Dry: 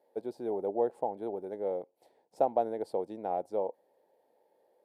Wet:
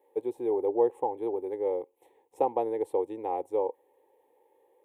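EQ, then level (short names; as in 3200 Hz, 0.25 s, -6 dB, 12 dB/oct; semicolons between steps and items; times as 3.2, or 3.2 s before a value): fixed phaser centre 970 Hz, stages 8; +6.5 dB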